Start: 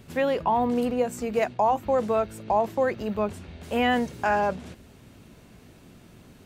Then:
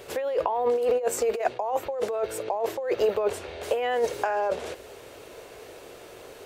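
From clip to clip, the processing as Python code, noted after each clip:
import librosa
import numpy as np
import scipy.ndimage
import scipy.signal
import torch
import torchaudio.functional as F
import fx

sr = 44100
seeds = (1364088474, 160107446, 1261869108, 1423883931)

y = fx.low_shelf_res(x, sr, hz=310.0, db=-13.5, q=3.0)
y = fx.over_compress(y, sr, threshold_db=-27.0, ratio=-1.0)
y = F.gain(torch.from_numpy(y), 1.5).numpy()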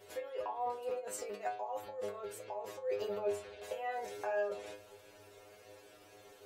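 y = fx.stiff_resonator(x, sr, f0_hz=100.0, decay_s=0.43, stiffness=0.002)
y = F.gain(torch.from_numpy(y), -1.0).numpy()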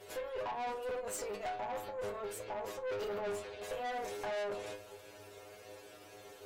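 y = fx.tube_stage(x, sr, drive_db=41.0, bias=0.45)
y = F.gain(torch.from_numpy(y), 6.0).numpy()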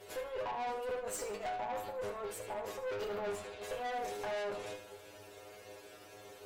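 y = fx.echo_feedback(x, sr, ms=75, feedback_pct=34, wet_db=-11.0)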